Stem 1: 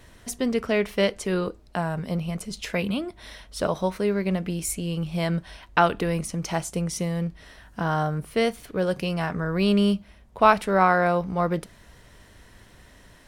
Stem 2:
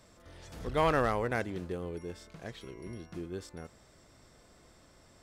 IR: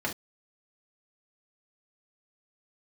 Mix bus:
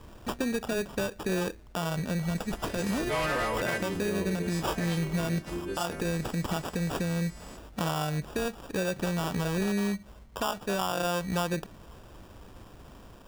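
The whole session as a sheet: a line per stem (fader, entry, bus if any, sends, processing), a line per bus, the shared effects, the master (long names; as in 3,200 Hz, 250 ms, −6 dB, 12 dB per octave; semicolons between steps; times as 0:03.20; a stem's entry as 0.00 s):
+2.0 dB, 0.00 s, no send, downward compressor 10 to 1, threshold −27 dBFS, peak gain reduction 17 dB; decimation without filtering 21×
+3.0 dB, 2.35 s, send −12.5 dB, every partial snapped to a pitch grid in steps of 2 semitones; soft clipping −31.5 dBFS, distortion −6 dB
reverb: on, pre-delay 3 ms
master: brickwall limiter −20.5 dBFS, peak gain reduction 9 dB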